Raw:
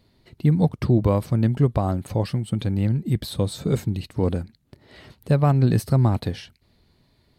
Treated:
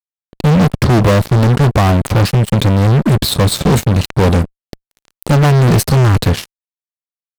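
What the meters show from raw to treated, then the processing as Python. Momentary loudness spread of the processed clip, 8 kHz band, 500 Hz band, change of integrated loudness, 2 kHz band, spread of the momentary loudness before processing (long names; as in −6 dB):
5 LU, +18.0 dB, +10.0 dB, +10.0 dB, +18.5 dB, 8 LU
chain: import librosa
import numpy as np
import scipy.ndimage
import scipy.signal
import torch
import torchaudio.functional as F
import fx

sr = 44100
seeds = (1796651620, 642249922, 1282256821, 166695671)

y = fx.fuzz(x, sr, gain_db=31.0, gate_db=-37.0)
y = y * 10.0 ** (5.5 / 20.0)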